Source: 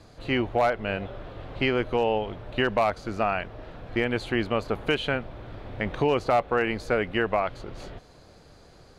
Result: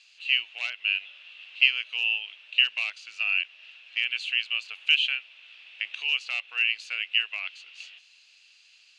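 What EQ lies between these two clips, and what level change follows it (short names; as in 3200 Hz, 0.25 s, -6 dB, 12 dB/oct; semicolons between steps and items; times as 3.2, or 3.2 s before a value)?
resonant high-pass 2700 Hz, resonance Q 12; LPF 7700 Hz 24 dB/oct; high shelf 4500 Hz +11 dB; -7.0 dB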